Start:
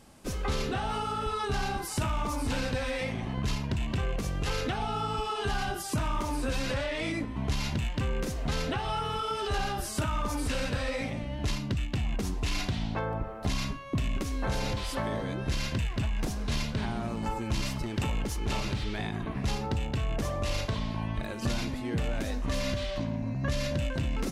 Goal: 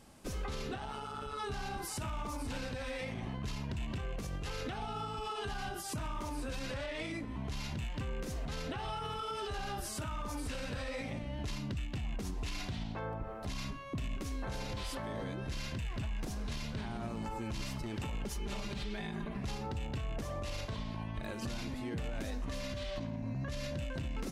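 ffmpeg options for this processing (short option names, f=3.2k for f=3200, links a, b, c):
-filter_complex "[0:a]asettb=1/sr,asplit=3[a][b][c];[a]atrim=end=18.254[d];[b]atrim=start=18.25:end=19.4,asetpts=PTS-STARTPTS,afade=t=in:d=0.004:c=qsin,afade=t=out:st=1.146:d=0.004:c=qsin,aecho=1:1:5:0.76,atrim=end_sample=50715[e];[c]atrim=start=19.396[f];[d][e]acrossfade=d=0.004:c1=hsin:c2=qsin[g];[g][f]acrossfade=d=0.004:c1=qsin:c2=hsin,alimiter=level_in=3.5dB:limit=-24dB:level=0:latency=1:release=100,volume=-3.5dB,asettb=1/sr,asplit=3[h][i][j];[h]atrim=end=0.764[k];[i]atrim=start=0.76:end=1.38,asetpts=PTS-STARTPTS,afade=t=in:d=0.004:c=qsin,afade=t=out:st=0.616:d=0.004:c=qsin,tremolo=f=140:d=0.621[l];[j]atrim=start=1.376[m];[k][l]acrossfade=d=0.004:c1=hsin:c2=qsin[n];[n][m]acrossfade=d=0.004:c1=qsin:c2=hsin,volume=-3dB"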